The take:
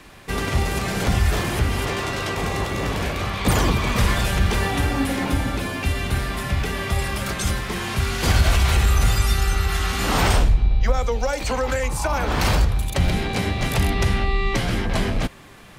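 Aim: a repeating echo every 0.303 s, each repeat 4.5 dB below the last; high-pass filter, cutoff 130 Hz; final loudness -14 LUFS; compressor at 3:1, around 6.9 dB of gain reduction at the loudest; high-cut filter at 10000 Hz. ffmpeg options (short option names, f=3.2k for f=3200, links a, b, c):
-af "highpass=130,lowpass=10k,acompressor=threshold=-26dB:ratio=3,aecho=1:1:303|606|909|1212|1515|1818|2121|2424|2727:0.596|0.357|0.214|0.129|0.0772|0.0463|0.0278|0.0167|0.01,volume=12.5dB"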